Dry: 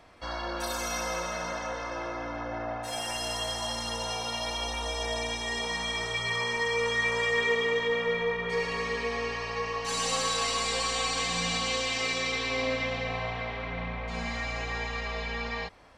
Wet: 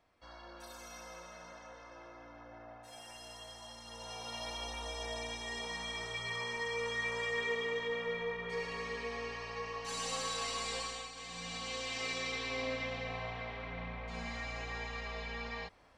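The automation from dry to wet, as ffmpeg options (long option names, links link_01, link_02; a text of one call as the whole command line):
ffmpeg -i in.wav -af "volume=2.5dB,afade=type=in:start_time=3.84:duration=0.58:silence=0.375837,afade=type=out:start_time=10.76:duration=0.36:silence=0.298538,afade=type=in:start_time=11.12:duration=0.99:silence=0.266073" out.wav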